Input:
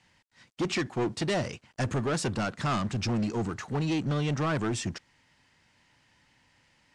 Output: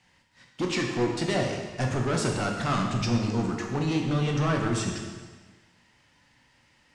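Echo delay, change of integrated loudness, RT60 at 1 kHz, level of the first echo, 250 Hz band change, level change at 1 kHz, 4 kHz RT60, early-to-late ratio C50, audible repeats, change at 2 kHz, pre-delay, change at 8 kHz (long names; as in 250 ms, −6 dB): no echo audible, +2.5 dB, 1.4 s, no echo audible, +3.0 dB, +3.0 dB, 1.3 s, 3.5 dB, no echo audible, +2.5 dB, 6 ms, +2.5 dB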